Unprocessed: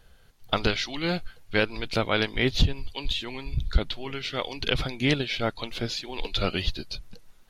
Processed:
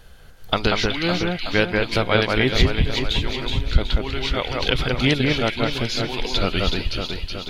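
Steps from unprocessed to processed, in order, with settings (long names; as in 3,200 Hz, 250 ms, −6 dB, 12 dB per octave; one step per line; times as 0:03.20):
delay that swaps between a low-pass and a high-pass 186 ms, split 2,400 Hz, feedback 71%, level −2 dB
in parallel at +1 dB: downward compressor, threshold −36 dBFS, peak gain reduction 21.5 dB
on the sum: level +2.5 dB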